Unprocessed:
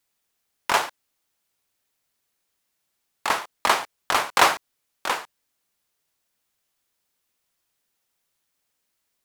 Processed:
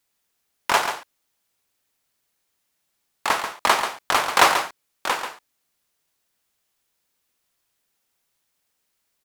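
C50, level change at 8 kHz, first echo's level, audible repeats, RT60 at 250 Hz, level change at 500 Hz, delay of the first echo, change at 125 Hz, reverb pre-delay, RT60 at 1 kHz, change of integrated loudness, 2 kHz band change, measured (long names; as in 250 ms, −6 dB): no reverb audible, +2.0 dB, −8.5 dB, 1, no reverb audible, +2.0 dB, 137 ms, +2.0 dB, no reverb audible, no reverb audible, +2.0 dB, +2.0 dB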